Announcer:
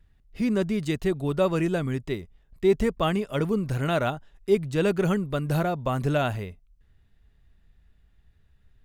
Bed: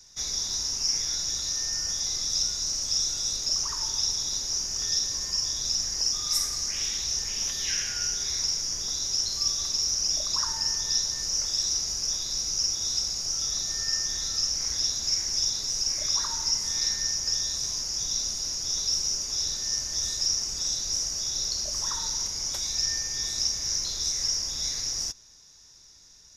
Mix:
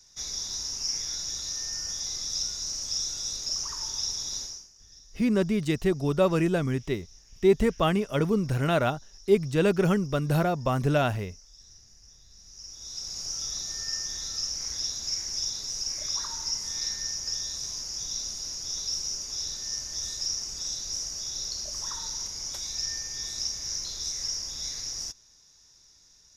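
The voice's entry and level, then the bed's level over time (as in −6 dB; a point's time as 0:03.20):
4.80 s, +0.5 dB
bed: 0:04.43 −4 dB
0:04.74 −26.5 dB
0:12.29 −26.5 dB
0:13.19 −4.5 dB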